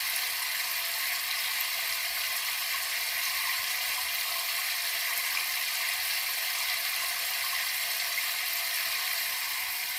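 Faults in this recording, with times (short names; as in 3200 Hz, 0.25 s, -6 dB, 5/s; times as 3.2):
crackle 130/s -35 dBFS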